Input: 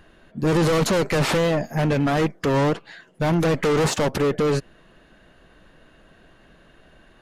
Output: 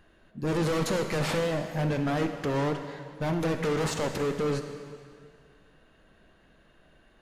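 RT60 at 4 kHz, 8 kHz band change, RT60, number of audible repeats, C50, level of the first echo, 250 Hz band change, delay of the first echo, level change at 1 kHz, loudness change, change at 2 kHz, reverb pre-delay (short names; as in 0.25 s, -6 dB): 2.0 s, -7.5 dB, 2.1 s, none, 7.0 dB, none, -7.5 dB, none, -7.5 dB, -7.5 dB, -7.5 dB, 7 ms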